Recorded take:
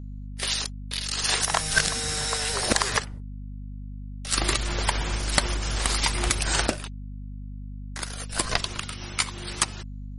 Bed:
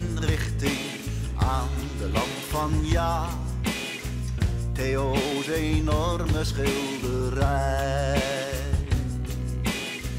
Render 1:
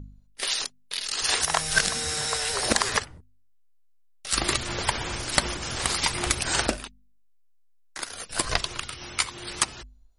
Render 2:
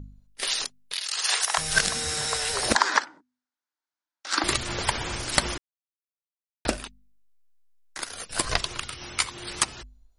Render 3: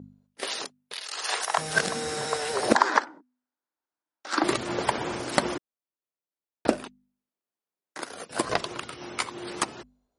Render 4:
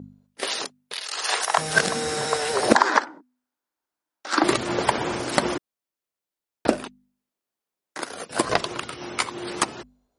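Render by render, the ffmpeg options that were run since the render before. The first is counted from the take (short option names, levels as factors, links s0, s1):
-af "bandreject=f=50:t=h:w=4,bandreject=f=100:t=h:w=4,bandreject=f=150:t=h:w=4,bandreject=f=200:t=h:w=4,bandreject=f=250:t=h:w=4"
-filter_complex "[0:a]asettb=1/sr,asplit=3[s0][s1][s2];[s0]atrim=end=0.934[s3];[s1]atrim=start=0.93:end=1.58,asetpts=PTS-STARTPTS,afade=t=in:d=0.004:c=qsin,afade=t=out:st=0.646:d=0.004:c=qsin,highpass=700[s4];[s2]atrim=start=1.576[s5];[s3][s4]acrossfade=d=0.004:c1=hsin:c2=qsin[s6];[s6][s5]acrossfade=d=0.004:c1=qsin:c2=hsin,asettb=1/sr,asplit=3[s7][s8][s9];[s7]atrim=end=2.754[s10];[s8]atrim=start=2.75:end=4.44,asetpts=PTS-STARTPTS,afade=t=in:d=0.004:c=qsin,afade=t=out:st=1.686:d=0.004:c=qsin,highpass=f=270:w=0.5412,highpass=f=270:w=1.3066,equalizer=f=300:t=q:w=4:g=8,equalizer=f=440:t=q:w=4:g=-8,equalizer=f=930:t=q:w=4:g=9,equalizer=f=1500:t=q:w=4:g=9,equalizer=f=2800:t=q:w=4:g=-5,lowpass=f=6700:w=0.5412,lowpass=f=6700:w=1.3066[s11];[s9]atrim=start=4.436[s12];[s10][s11]acrossfade=d=0.004:c1=hsin:c2=qsin[s13];[s13][s12]acrossfade=d=0.004:c1=qsin:c2=hsin,asplit=3[s14][s15][s16];[s14]atrim=end=5.58,asetpts=PTS-STARTPTS,afade=t=out:st=5.576:d=0.004:c=hsin[s17];[s15]atrim=start=5.58:end=6.65,asetpts=PTS-STARTPTS,volume=0[s18];[s16]atrim=start=6.65,asetpts=PTS-STARTPTS,afade=t=in:d=0.004:c=hsin[s19];[s17][s18][s19]concat=n=3:v=0:a=1"
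-af "highpass=230,tiltshelf=f=1300:g=8"
-af "volume=1.68,alimiter=limit=0.891:level=0:latency=1"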